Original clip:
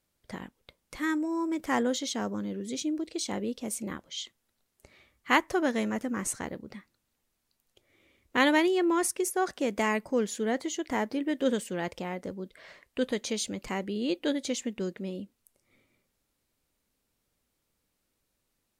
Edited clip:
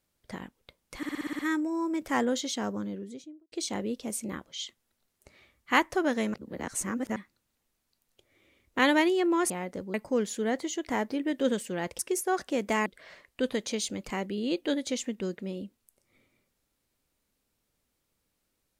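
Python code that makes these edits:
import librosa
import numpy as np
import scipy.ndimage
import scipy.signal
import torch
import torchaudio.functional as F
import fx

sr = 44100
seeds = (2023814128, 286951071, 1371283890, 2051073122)

y = fx.studio_fade_out(x, sr, start_s=2.29, length_s=0.81)
y = fx.edit(y, sr, fx.stutter(start_s=0.97, slice_s=0.06, count=8),
    fx.reverse_span(start_s=5.92, length_s=0.82),
    fx.swap(start_s=9.08, length_s=0.87, other_s=12.0, other_length_s=0.44), tone=tone)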